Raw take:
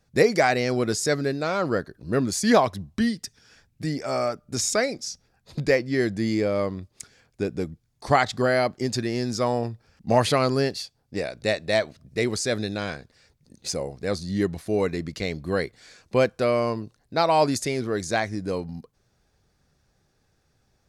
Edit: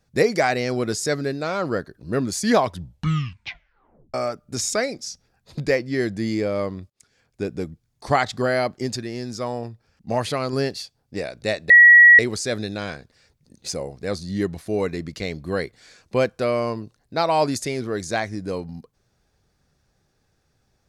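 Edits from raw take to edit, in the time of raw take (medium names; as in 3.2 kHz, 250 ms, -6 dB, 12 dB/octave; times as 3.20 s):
2.64 s: tape stop 1.50 s
6.90–7.45 s: fade in
8.96–10.53 s: gain -4 dB
11.70–12.19 s: bleep 1.92 kHz -6 dBFS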